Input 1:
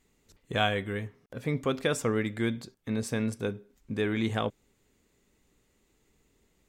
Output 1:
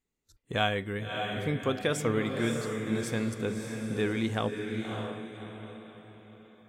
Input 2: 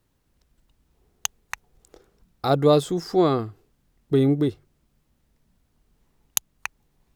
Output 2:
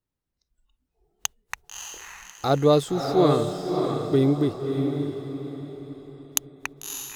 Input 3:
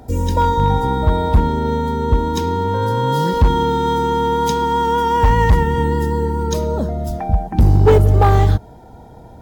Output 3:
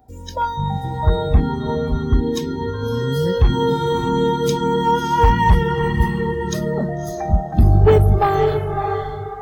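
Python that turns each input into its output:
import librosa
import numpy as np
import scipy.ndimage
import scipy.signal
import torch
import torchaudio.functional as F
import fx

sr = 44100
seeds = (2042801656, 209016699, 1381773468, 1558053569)

y = fx.echo_diffused(x, sr, ms=600, feedback_pct=41, wet_db=-4.5)
y = fx.noise_reduce_blind(y, sr, reduce_db=16)
y = F.gain(torch.from_numpy(y), -1.0).numpy()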